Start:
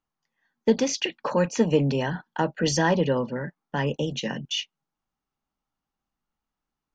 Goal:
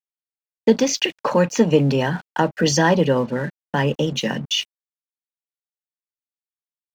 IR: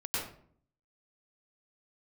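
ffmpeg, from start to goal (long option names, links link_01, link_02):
-filter_complex "[0:a]highpass=frequency=68:width=0.5412,highpass=frequency=68:width=1.3066,asplit=2[link_01][link_02];[link_02]acompressor=threshold=-30dB:ratio=6,volume=-2dB[link_03];[link_01][link_03]amix=inputs=2:normalize=0,aeval=exprs='sgn(val(0))*max(abs(val(0))-0.00501,0)':channel_layout=same,volume=4dB"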